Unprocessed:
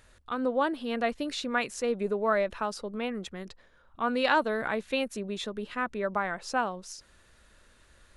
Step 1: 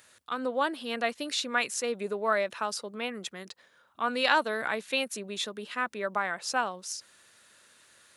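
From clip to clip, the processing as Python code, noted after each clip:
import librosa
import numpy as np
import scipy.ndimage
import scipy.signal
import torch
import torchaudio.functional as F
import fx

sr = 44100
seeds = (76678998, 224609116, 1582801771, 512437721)

y = scipy.signal.sosfilt(scipy.signal.butter(4, 100.0, 'highpass', fs=sr, output='sos'), x)
y = fx.tilt_eq(y, sr, slope=2.5)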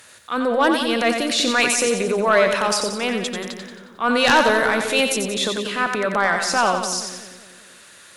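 y = fx.transient(x, sr, attack_db=-6, sustain_db=6)
y = fx.fold_sine(y, sr, drive_db=8, ceiling_db=-8.5)
y = fx.echo_split(y, sr, split_hz=480.0, low_ms=194, high_ms=90, feedback_pct=52, wet_db=-6)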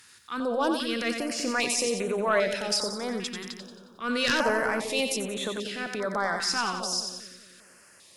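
y = fx.peak_eq(x, sr, hz=5100.0, db=8.5, octaves=0.21)
y = fx.filter_held_notch(y, sr, hz=2.5, low_hz=600.0, high_hz=5000.0)
y = F.gain(torch.from_numpy(y), -7.5).numpy()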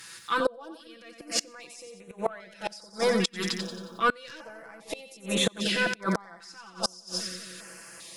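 y = x + 0.92 * np.pad(x, (int(6.0 * sr / 1000.0), 0))[:len(x)]
y = fx.gate_flip(y, sr, shuts_db=-19.0, range_db=-28)
y = F.gain(torch.from_numpy(y), 6.0).numpy()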